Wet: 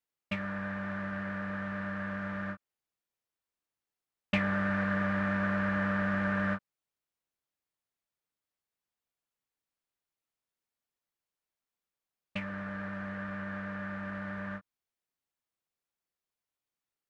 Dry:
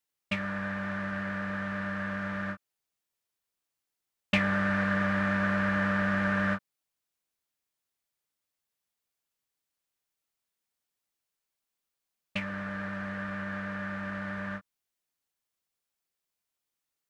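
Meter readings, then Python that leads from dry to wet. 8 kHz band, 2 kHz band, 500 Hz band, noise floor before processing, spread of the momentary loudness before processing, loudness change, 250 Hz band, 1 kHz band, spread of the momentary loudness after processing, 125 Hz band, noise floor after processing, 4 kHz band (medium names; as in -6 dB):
no reading, -4.0 dB, -2.5 dB, under -85 dBFS, 9 LU, -3.0 dB, -2.0 dB, -3.0 dB, 9 LU, -2.0 dB, under -85 dBFS, -6.0 dB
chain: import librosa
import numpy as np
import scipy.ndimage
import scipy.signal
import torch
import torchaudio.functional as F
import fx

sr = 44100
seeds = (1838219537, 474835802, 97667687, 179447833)

y = fx.high_shelf(x, sr, hz=3100.0, db=-8.0)
y = y * librosa.db_to_amplitude(-2.0)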